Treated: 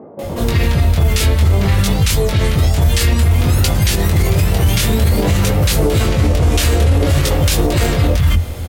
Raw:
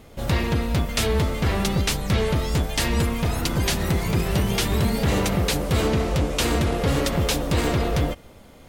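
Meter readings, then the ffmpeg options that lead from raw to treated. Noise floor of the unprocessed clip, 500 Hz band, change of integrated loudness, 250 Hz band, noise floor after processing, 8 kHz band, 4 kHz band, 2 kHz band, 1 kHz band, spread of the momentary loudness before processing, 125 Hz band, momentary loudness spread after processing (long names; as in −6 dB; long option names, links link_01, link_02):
−47 dBFS, +5.5 dB, +8.5 dB, +5.0 dB, −23 dBFS, +8.0 dB, +6.0 dB, +5.5 dB, +4.0 dB, 2 LU, +11.0 dB, 2 LU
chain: -filter_complex "[0:a]equalizer=frequency=84:width_type=o:width=0.69:gain=14,areverse,acompressor=threshold=-24dB:ratio=6,areverse,flanger=delay=19:depth=5.4:speed=0.54,highshelf=frequency=8200:gain=6,acrossover=split=210|970[link_01][link_02][link_03];[link_03]adelay=190[link_04];[link_01]adelay=230[link_05];[link_05][link_02][link_04]amix=inputs=3:normalize=0,alimiter=level_in=24.5dB:limit=-1dB:release=50:level=0:latency=1,volume=-4dB"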